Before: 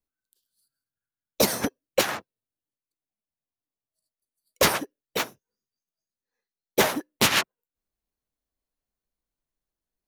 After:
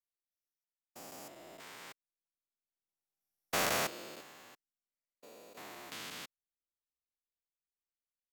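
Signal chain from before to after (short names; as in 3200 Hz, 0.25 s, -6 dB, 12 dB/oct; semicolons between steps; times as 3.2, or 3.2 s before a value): stepped spectrum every 0.4 s; Doppler pass-by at 4.29, 11 m/s, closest 4.9 m; varispeed +21%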